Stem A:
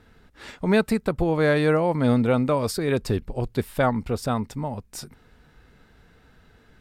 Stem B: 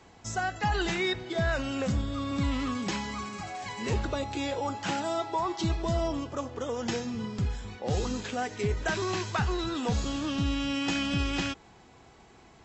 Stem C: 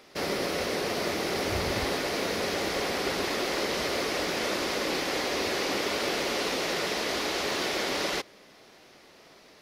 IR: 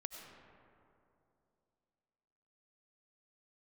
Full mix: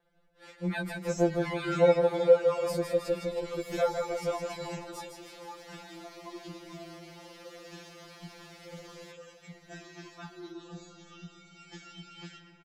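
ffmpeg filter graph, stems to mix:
-filter_complex "[0:a]agate=range=-6dB:threshold=-43dB:ratio=16:detection=peak,equalizer=f=550:w=2.9:g=12.5,volume=-9.5dB,asplit=3[a][b][c];[b]volume=-5.5dB[d];[1:a]adelay=850,volume=-0.5dB,asplit=2[e][f];[f]volume=-13dB[g];[2:a]acompressor=threshold=-37dB:ratio=6,asoftclip=type=tanh:threshold=-37.5dB,adelay=900,volume=-7dB[h];[c]apad=whole_len=594912[i];[e][i]sidechaingate=range=-22dB:threshold=-56dB:ratio=16:detection=peak[j];[j][h]amix=inputs=2:normalize=0,acompressor=threshold=-36dB:ratio=6,volume=0dB[k];[3:a]atrim=start_sample=2205[l];[g][l]afir=irnorm=-1:irlink=0[m];[d]aecho=0:1:158|316|474|632|790|948|1106|1264:1|0.55|0.303|0.166|0.0915|0.0503|0.0277|0.0152[n];[a][k][m][n]amix=inputs=4:normalize=0,afftfilt=real='re*2.83*eq(mod(b,8),0)':imag='im*2.83*eq(mod(b,8),0)':win_size=2048:overlap=0.75"

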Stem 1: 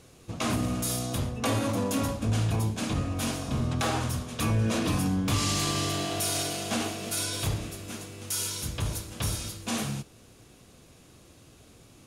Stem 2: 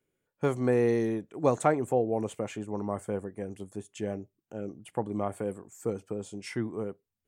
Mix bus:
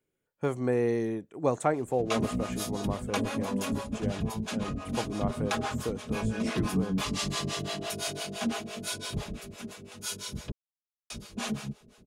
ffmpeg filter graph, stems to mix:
-filter_complex "[0:a]highshelf=f=7.4k:g=-9.5,aecho=1:1:4.8:0.57,acrossover=split=470[a][b];[a]aeval=exprs='val(0)*(1-1/2+1/2*cos(2*PI*5.9*n/s))':c=same[c];[b]aeval=exprs='val(0)*(1-1/2-1/2*cos(2*PI*5.9*n/s))':c=same[d];[c][d]amix=inputs=2:normalize=0,adelay=1700,volume=1dB,asplit=3[e][f][g];[e]atrim=end=10.52,asetpts=PTS-STARTPTS,afade=t=out:st=10.516:d=0.004:c=hsin[h];[f]atrim=start=10.52:end=11.1,asetpts=PTS-STARTPTS,volume=0[i];[g]atrim=start=11.1,asetpts=PTS-STARTPTS,afade=t=in:d=0.004:c=hsin[j];[h][i][j]concat=n=3:v=0:a=1[k];[1:a]volume=-2dB[l];[k][l]amix=inputs=2:normalize=0"

